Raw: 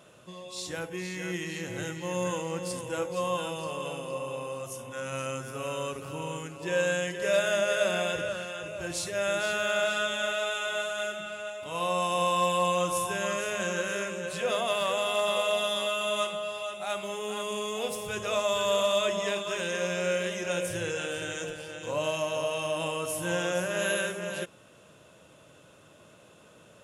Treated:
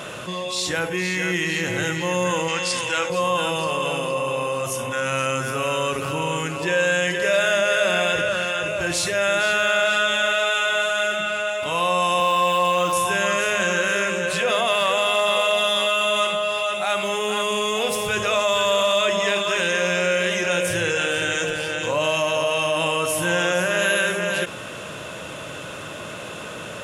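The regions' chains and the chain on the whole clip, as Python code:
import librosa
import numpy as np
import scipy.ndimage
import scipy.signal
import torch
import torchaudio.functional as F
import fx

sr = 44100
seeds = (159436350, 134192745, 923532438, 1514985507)

y = fx.chain(x, sr, fx.lowpass(hz=5900.0, slope=12),
    fx.tilt_shelf(db=-8.5, hz=1100.0), at=(2.48, 3.1))
y = fx.chain(y, sr, fx.median_filter(points=5),
    fx.highpass(hz=170.0, slope=12), at=(12.2, 12.93))
y = fx.peak_eq(y, sr, hz=2000.0, db=6.0, octaves=2.2)
y = fx.env_flatten(y, sr, amount_pct=50)
y = F.gain(torch.from_numpy(y), 2.5).numpy()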